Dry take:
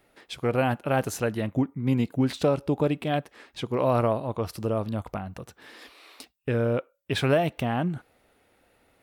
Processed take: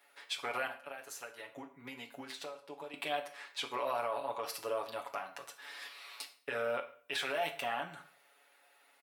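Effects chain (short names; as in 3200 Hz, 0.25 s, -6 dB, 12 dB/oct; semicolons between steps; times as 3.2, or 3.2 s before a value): HPF 850 Hz 12 dB/oct; comb 7.1 ms, depth 88%; 0.67–2.94 compressor 12:1, threshold -41 dBFS, peak gain reduction 20 dB; limiter -24 dBFS, peak gain reduction 14 dB; reverb RT60 0.45 s, pre-delay 5 ms, DRR 7 dB; gain -2 dB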